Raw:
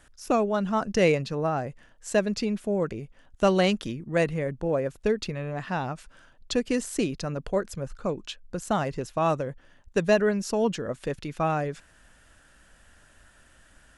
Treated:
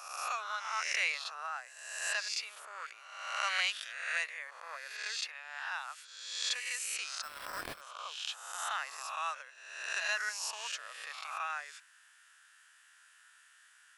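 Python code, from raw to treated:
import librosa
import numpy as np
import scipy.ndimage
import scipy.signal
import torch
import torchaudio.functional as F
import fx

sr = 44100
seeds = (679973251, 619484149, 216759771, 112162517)

y = fx.spec_swells(x, sr, rise_s=1.1)
y = scipy.signal.sosfilt(scipy.signal.butter(4, 1200.0, 'highpass', fs=sr, output='sos'), y)
y = fx.sample_hold(y, sr, seeds[0], rate_hz=6700.0, jitter_pct=0, at=(7.22, 7.8), fade=0.02)
y = y * librosa.db_to_amplitude(-4.5)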